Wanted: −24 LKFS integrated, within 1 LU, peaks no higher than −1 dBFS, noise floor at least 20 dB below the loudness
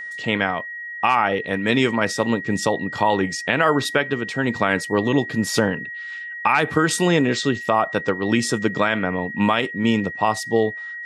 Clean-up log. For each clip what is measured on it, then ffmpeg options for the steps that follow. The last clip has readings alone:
interfering tone 1,900 Hz; level of the tone −30 dBFS; integrated loudness −21.0 LKFS; sample peak −4.0 dBFS; target loudness −24.0 LKFS
→ -af "bandreject=frequency=1900:width=30"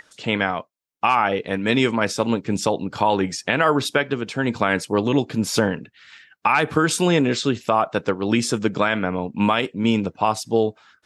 interfering tone none found; integrated loudness −21.5 LKFS; sample peak −4.0 dBFS; target loudness −24.0 LKFS
→ -af "volume=-2.5dB"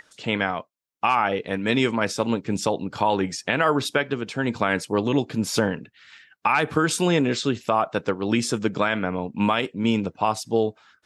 integrated loudness −24.0 LKFS; sample peak −6.5 dBFS; background noise floor −66 dBFS

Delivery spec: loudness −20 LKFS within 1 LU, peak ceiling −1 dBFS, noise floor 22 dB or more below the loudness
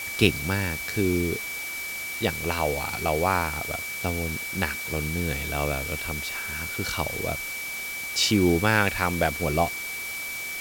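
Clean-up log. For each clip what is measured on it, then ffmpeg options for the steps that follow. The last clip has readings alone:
interfering tone 2,300 Hz; level of the tone −32 dBFS; background noise floor −34 dBFS; target noise floor −48 dBFS; integrated loudness −26.0 LKFS; sample peak −3.5 dBFS; target loudness −20.0 LKFS
→ -af "bandreject=frequency=2300:width=30"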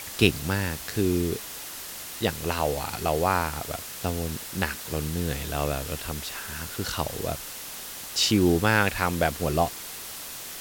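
interfering tone none found; background noise floor −39 dBFS; target noise floor −50 dBFS
→ -af "afftdn=noise_reduction=11:noise_floor=-39"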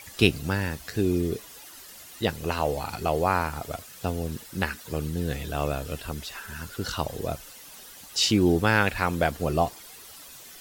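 background noise floor −46 dBFS; target noise floor −50 dBFS
→ -af "afftdn=noise_reduction=6:noise_floor=-46"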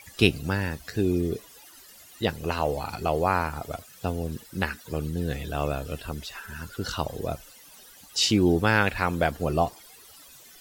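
background noise floor −51 dBFS; integrated loudness −27.5 LKFS; sample peak −4.0 dBFS; target loudness −20.0 LKFS
→ -af "volume=7.5dB,alimiter=limit=-1dB:level=0:latency=1"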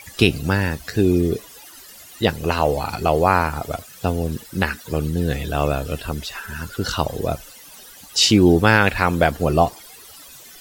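integrated loudness −20.0 LKFS; sample peak −1.0 dBFS; background noise floor −43 dBFS

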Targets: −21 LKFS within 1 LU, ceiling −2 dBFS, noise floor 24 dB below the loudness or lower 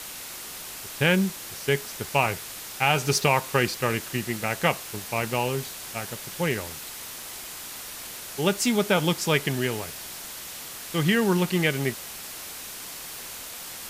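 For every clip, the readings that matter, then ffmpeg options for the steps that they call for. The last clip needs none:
background noise floor −39 dBFS; target noise floor −51 dBFS; integrated loudness −27.0 LKFS; sample peak −7.5 dBFS; target loudness −21.0 LKFS
→ -af "afftdn=noise_reduction=12:noise_floor=-39"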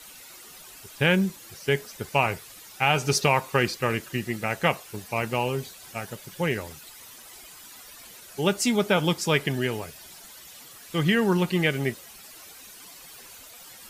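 background noise floor −47 dBFS; target noise floor −50 dBFS
→ -af "afftdn=noise_reduction=6:noise_floor=-47"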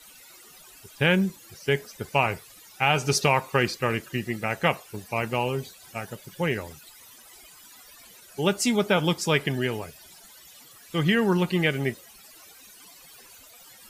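background noise floor −51 dBFS; integrated loudness −25.5 LKFS; sample peak −7.5 dBFS; target loudness −21.0 LKFS
→ -af "volume=4.5dB"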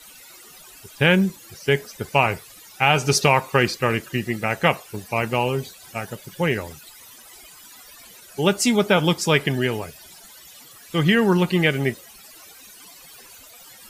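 integrated loudness −21.0 LKFS; sample peak −3.0 dBFS; background noise floor −46 dBFS

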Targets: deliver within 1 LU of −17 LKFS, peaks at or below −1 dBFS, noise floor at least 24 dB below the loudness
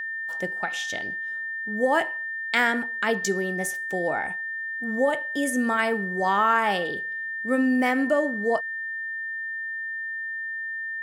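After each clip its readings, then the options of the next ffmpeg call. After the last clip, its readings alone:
interfering tone 1,800 Hz; level of the tone −29 dBFS; integrated loudness −25.5 LKFS; sample peak −7.5 dBFS; target loudness −17.0 LKFS
→ -af "bandreject=frequency=1800:width=30"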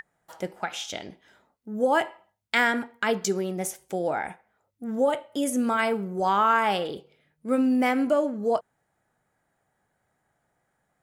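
interfering tone none found; integrated loudness −26.0 LKFS; sample peak −8.5 dBFS; target loudness −17.0 LKFS
→ -af "volume=9dB,alimiter=limit=-1dB:level=0:latency=1"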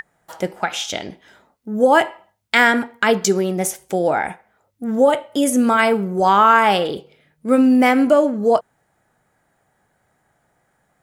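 integrated loudness −17.0 LKFS; sample peak −1.0 dBFS; background noise floor −66 dBFS

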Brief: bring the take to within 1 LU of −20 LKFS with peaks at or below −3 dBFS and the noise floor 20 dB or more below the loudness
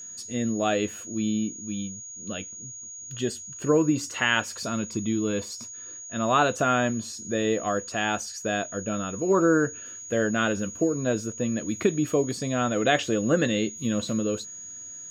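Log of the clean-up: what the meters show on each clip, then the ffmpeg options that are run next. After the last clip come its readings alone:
interfering tone 6,700 Hz; level of the tone −38 dBFS; integrated loudness −26.5 LKFS; sample peak −8.0 dBFS; target loudness −20.0 LKFS
→ -af "bandreject=frequency=6700:width=30"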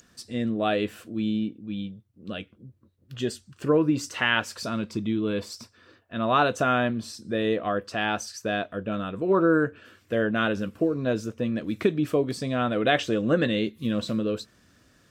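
interfering tone none found; integrated loudness −26.5 LKFS; sample peak −8.0 dBFS; target loudness −20.0 LKFS
→ -af "volume=6.5dB,alimiter=limit=-3dB:level=0:latency=1"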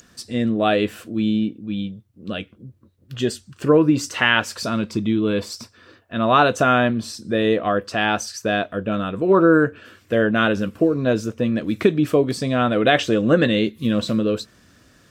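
integrated loudness −20.0 LKFS; sample peak −3.0 dBFS; background noise floor −56 dBFS

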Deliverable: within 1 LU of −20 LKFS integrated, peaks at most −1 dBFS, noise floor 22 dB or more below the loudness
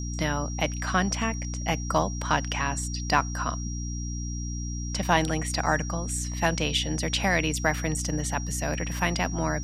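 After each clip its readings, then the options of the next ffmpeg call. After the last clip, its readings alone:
mains hum 60 Hz; hum harmonics up to 300 Hz; level of the hum −30 dBFS; interfering tone 5,700 Hz; level of the tone −39 dBFS; integrated loudness −27.5 LKFS; sample peak −5.5 dBFS; target loudness −20.0 LKFS
→ -af "bandreject=frequency=60:width_type=h:width=6,bandreject=frequency=120:width_type=h:width=6,bandreject=frequency=180:width_type=h:width=6,bandreject=frequency=240:width_type=h:width=6,bandreject=frequency=300:width_type=h:width=6"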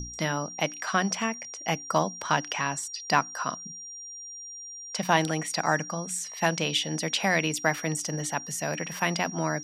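mains hum none found; interfering tone 5,700 Hz; level of the tone −39 dBFS
→ -af "bandreject=frequency=5700:width=30"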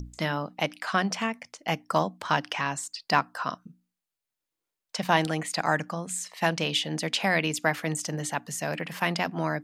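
interfering tone none found; integrated loudness −28.5 LKFS; sample peak −6.0 dBFS; target loudness −20.0 LKFS
→ -af "volume=8.5dB,alimiter=limit=-1dB:level=0:latency=1"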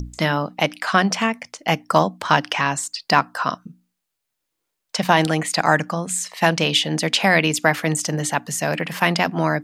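integrated loudness −20.0 LKFS; sample peak −1.0 dBFS; background noise floor −79 dBFS

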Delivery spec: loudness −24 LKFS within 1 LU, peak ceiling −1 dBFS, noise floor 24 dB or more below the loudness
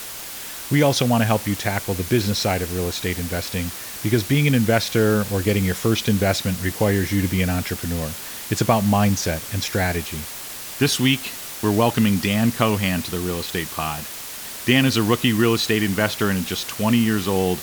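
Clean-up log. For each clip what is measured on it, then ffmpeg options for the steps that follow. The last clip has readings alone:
background noise floor −34 dBFS; target noise floor −45 dBFS; integrated loudness −21.0 LKFS; sample peak −2.5 dBFS; target loudness −24.0 LKFS
→ -af "afftdn=noise_reduction=11:noise_floor=-34"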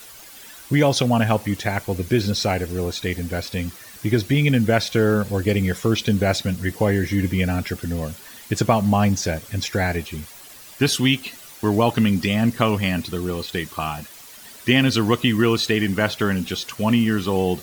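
background noise floor −43 dBFS; target noise floor −45 dBFS
→ -af "afftdn=noise_reduction=6:noise_floor=-43"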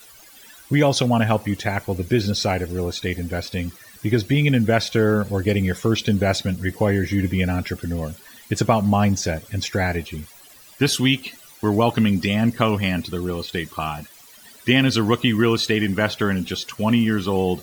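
background noise floor −47 dBFS; integrated loudness −21.5 LKFS; sample peak −3.0 dBFS; target loudness −24.0 LKFS
→ -af "volume=-2.5dB"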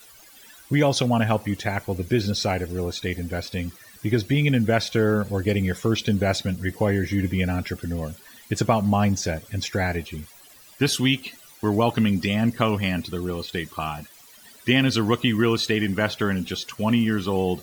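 integrated loudness −24.0 LKFS; sample peak −5.5 dBFS; background noise floor −49 dBFS

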